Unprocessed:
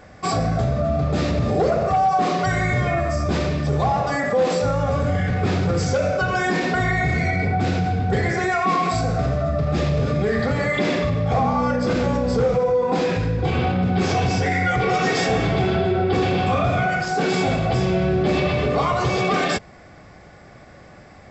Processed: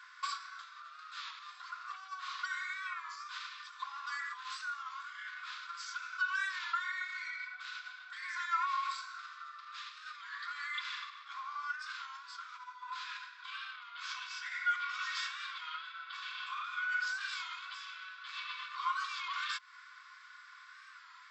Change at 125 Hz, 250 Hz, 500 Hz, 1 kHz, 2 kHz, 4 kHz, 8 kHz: under -40 dB, under -40 dB, under -40 dB, -17.5 dB, -11.5 dB, -11.0 dB, n/a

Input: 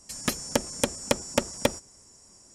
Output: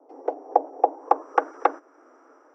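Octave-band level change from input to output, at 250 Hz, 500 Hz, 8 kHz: -6.5 dB, +2.5 dB, under -30 dB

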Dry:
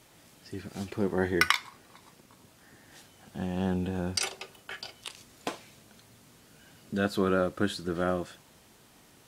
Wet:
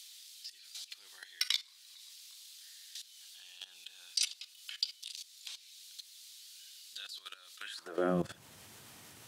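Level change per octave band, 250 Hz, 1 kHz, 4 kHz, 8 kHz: -12.0, -12.5, 0.0, -1.5 dB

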